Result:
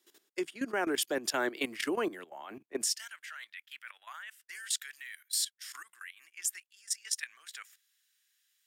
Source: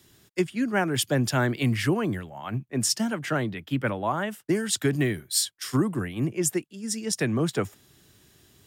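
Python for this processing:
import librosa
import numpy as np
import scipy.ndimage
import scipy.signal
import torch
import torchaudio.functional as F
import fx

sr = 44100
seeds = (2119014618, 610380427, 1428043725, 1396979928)

y = fx.cheby1_highpass(x, sr, hz=fx.steps((0.0, 330.0), (2.84, 1700.0)), order=3)
y = fx.level_steps(y, sr, step_db=15)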